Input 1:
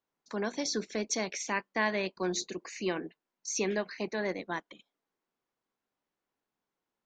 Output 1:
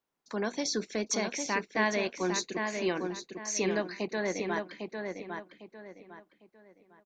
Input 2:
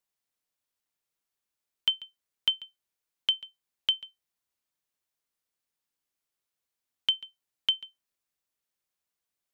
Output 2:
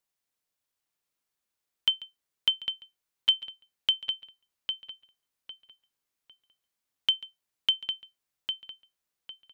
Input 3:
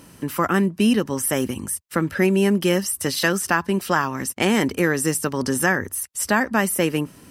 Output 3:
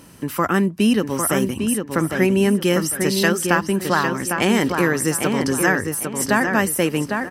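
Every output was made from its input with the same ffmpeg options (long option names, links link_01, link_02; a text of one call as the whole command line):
ffmpeg -i in.wav -filter_complex "[0:a]asplit=2[link_01][link_02];[link_02]adelay=803,lowpass=frequency=3300:poles=1,volume=-5dB,asplit=2[link_03][link_04];[link_04]adelay=803,lowpass=frequency=3300:poles=1,volume=0.31,asplit=2[link_05][link_06];[link_06]adelay=803,lowpass=frequency=3300:poles=1,volume=0.31,asplit=2[link_07][link_08];[link_08]adelay=803,lowpass=frequency=3300:poles=1,volume=0.31[link_09];[link_01][link_03][link_05][link_07][link_09]amix=inputs=5:normalize=0,volume=1dB" out.wav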